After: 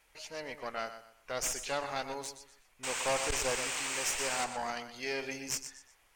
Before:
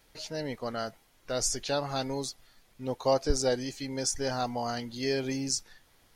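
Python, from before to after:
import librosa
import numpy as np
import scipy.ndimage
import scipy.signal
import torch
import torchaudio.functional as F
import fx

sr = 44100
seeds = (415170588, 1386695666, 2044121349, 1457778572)

y = fx.spec_paint(x, sr, seeds[0], shape='noise', start_s=2.83, length_s=1.62, low_hz=310.0, high_hz=9000.0, level_db=-34.0)
y = fx.graphic_eq(y, sr, hz=(125, 250, 1000, 4000, 8000), db=(-8, -7, 5, -6, 5))
y = fx.echo_feedback(y, sr, ms=122, feedback_pct=32, wet_db=-10.5)
y = fx.tube_stage(y, sr, drive_db=23.0, bias=0.65)
y = fx.peak_eq(y, sr, hz=2500.0, db=9.5, octaves=0.92)
y = y * 10.0 ** (-3.0 / 20.0)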